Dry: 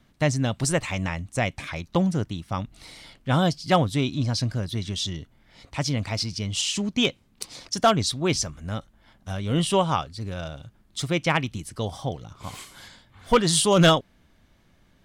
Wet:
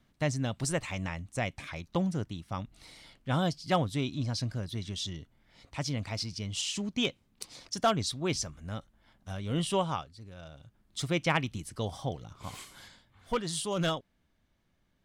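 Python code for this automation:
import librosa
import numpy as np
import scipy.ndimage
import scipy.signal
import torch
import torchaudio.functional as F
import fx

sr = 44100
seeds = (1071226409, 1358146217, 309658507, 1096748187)

y = fx.gain(x, sr, db=fx.line((9.85, -7.5), (10.27, -16.5), (11.02, -5.0), (12.73, -5.0), (13.46, -13.5)))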